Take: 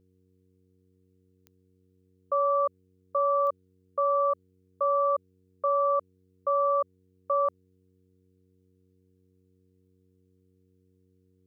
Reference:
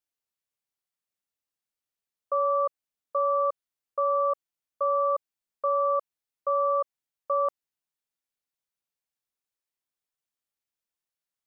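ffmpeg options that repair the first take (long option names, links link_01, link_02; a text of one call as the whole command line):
ffmpeg -i in.wav -af "adeclick=threshold=4,bandreject=frequency=92.7:width_type=h:width=4,bandreject=frequency=185.4:width_type=h:width=4,bandreject=frequency=278.1:width_type=h:width=4,bandreject=frequency=370.8:width_type=h:width=4,bandreject=frequency=463.5:width_type=h:width=4" out.wav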